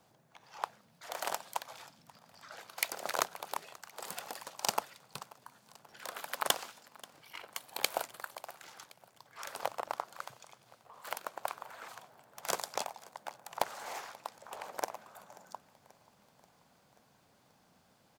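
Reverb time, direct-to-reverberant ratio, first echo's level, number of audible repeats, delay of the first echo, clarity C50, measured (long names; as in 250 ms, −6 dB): no reverb audible, no reverb audible, −22.0 dB, 3, 534 ms, no reverb audible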